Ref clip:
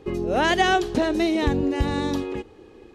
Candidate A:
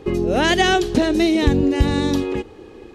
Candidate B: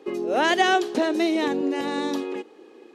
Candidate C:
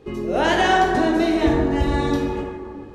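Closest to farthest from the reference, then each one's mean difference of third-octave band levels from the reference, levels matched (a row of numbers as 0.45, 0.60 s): A, B, C; 1.5, 3.5, 4.5 dB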